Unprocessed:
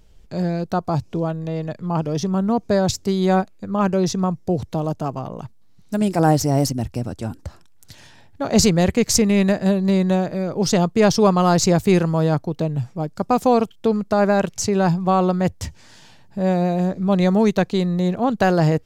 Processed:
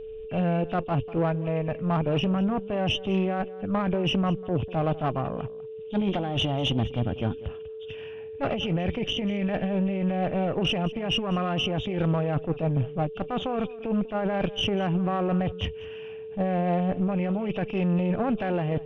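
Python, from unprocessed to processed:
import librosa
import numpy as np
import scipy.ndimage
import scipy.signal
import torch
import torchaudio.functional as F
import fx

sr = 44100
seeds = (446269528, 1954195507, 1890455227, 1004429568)

p1 = fx.freq_compress(x, sr, knee_hz=2300.0, ratio=4.0)
p2 = fx.notch(p1, sr, hz=890.0, q=12.0)
p3 = fx.over_compress(p2, sr, threshold_db=-21.0, ratio=-1.0)
p4 = fx.tube_stage(p3, sr, drive_db=18.0, bias=0.6)
p5 = fx.air_absorb(p4, sr, metres=130.0)
p6 = p5 + fx.echo_single(p5, sr, ms=196, db=-19.0, dry=0)
p7 = p6 + 10.0 ** (-36.0 / 20.0) * np.sin(2.0 * np.pi * 440.0 * np.arange(len(p6)) / sr)
y = fx.attack_slew(p7, sr, db_per_s=290.0)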